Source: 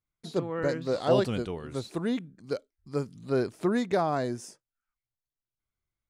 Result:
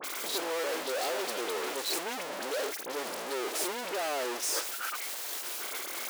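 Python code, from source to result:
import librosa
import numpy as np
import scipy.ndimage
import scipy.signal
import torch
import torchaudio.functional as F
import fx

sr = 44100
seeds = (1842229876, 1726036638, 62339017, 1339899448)

y = np.sign(x) * np.sqrt(np.mean(np.square(x)))
y = scipy.signal.sosfilt(scipy.signal.butter(4, 370.0, 'highpass', fs=sr, output='sos'), y)
y = fx.dispersion(y, sr, late='highs', ms=42.0, hz=2200.0)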